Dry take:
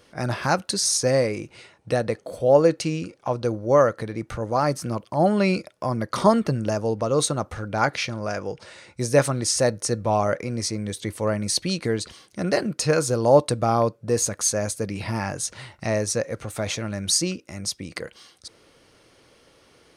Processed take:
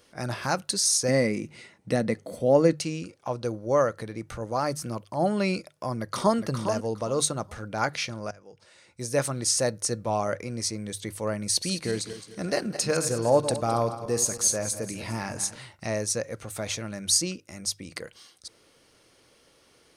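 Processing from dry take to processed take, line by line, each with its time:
0:01.08–0:02.73: hollow resonant body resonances 210/2,000 Hz, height 11 dB, ringing for 25 ms
0:05.97–0:06.39: delay throw 410 ms, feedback 20%, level −7.5 dB
0:08.31–0:09.43: fade in, from −23 dB
0:11.49–0:15.59: feedback delay that plays each chunk backwards 107 ms, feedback 59%, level −10.5 dB
whole clip: high-shelf EQ 4,800 Hz +7 dB; mains-hum notches 50/100/150 Hz; level −5.5 dB

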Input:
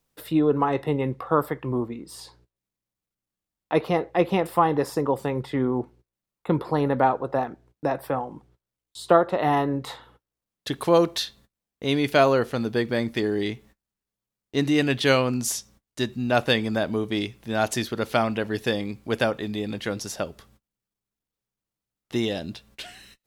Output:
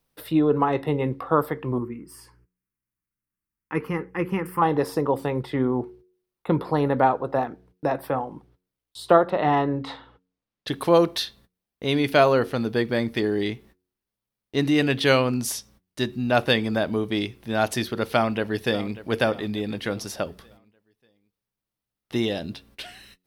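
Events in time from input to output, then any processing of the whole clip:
0:01.78–0:04.62: phaser with its sweep stopped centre 1,600 Hz, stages 4
0:09.30–0:10.68: low-pass filter 5,100 Hz
0:18.14–0:18.94: delay throw 590 ms, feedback 40%, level −16 dB
whole clip: parametric band 7,100 Hz −7.5 dB 0.39 octaves; hum removal 91.34 Hz, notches 5; level +1 dB

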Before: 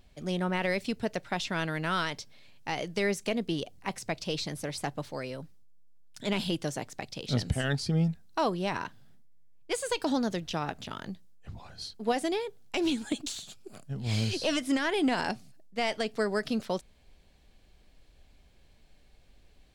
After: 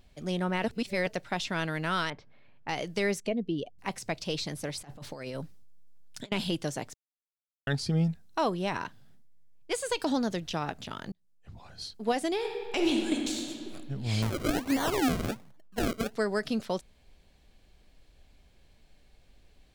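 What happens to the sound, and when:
0:00.64–0:01.07: reverse
0:02.10–0:02.69: Chebyshev low-pass filter 1,600 Hz
0:03.20–0:03.79: expanding power law on the bin magnitudes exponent 1.5
0:04.81–0:06.32: compressor whose output falls as the input rises −39 dBFS, ratio −0.5
0:06.94–0:07.67: silence
0:08.27–0:08.81: notch filter 4,600 Hz, Q 9.4
0:09.99–0:10.62: one half of a high-frequency compander encoder only
0:11.12–0:11.81: fade in
0:12.33–0:13.62: thrown reverb, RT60 2.2 s, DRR 1 dB
0:14.22–0:16.13: sample-and-hold swept by an LFO 34× 1.3 Hz

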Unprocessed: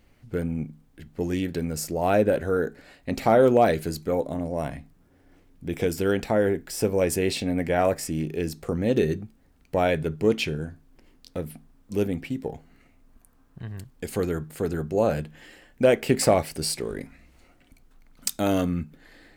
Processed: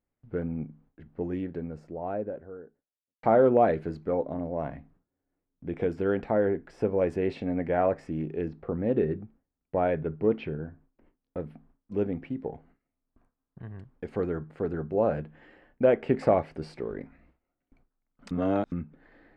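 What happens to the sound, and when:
0:00.67–0:03.23: fade out and dull
0:08.48–0:11.37: high-frequency loss of the air 180 metres
0:18.31–0:18.72: reverse
whole clip: low-pass filter 1,500 Hz 12 dB per octave; low-shelf EQ 150 Hz −5.5 dB; noise gate with hold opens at −48 dBFS; level −2 dB

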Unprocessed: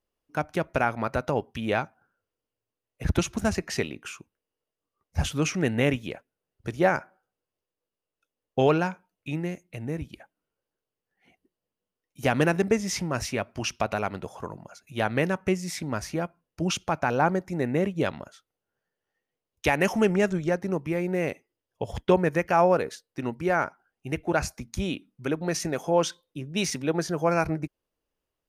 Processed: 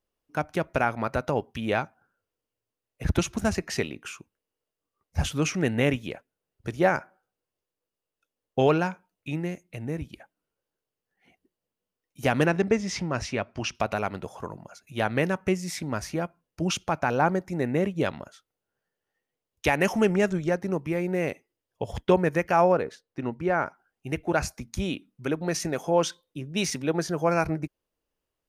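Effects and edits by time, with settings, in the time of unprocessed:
0:12.46–0:13.75: low-pass filter 5,700 Hz
0:22.72–0:23.66: low-pass filter 2,200 Hz 6 dB per octave

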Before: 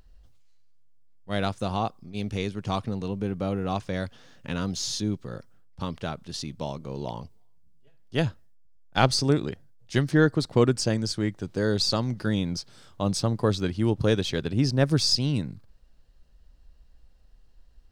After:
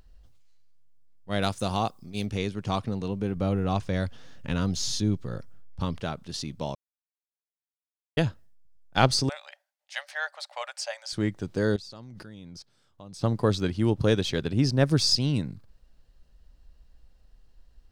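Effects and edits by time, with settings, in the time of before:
0:01.42–0:02.26: high-shelf EQ 5,300 Hz +12 dB
0:03.36–0:06.00: low-shelf EQ 87 Hz +11.5 dB
0:06.75–0:08.17: silence
0:09.29–0:11.13: Chebyshev high-pass with heavy ripple 560 Hz, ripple 6 dB
0:11.76–0:13.23: output level in coarse steps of 22 dB

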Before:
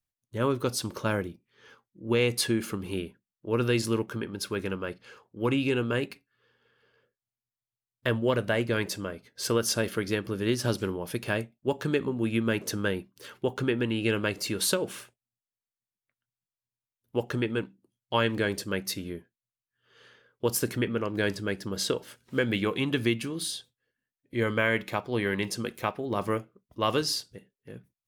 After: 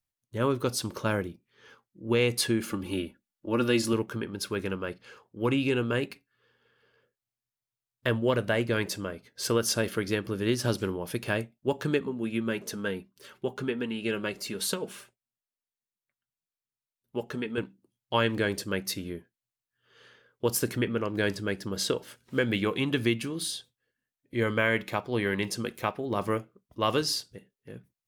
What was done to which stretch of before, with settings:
0:02.70–0:03.93: comb filter 3.5 ms
0:11.99–0:17.58: flanger 1.1 Hz, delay 4.3 ms, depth 1.1 ms, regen −33%

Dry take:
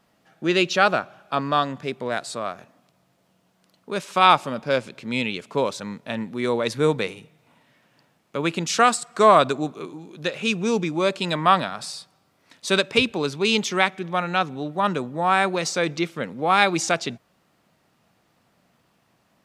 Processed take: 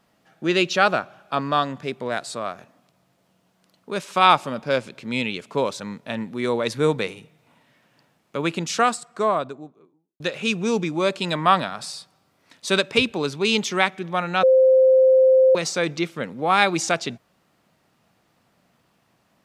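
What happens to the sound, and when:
0:08.37–0:10.20: fade out and dull
0:14.43–0:15.55: beep over 522 Hz −11 dBFS

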